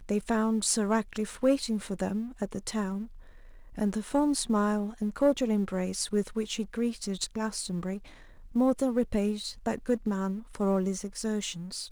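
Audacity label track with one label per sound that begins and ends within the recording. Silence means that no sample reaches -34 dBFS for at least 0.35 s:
3.780000	7.970000	sound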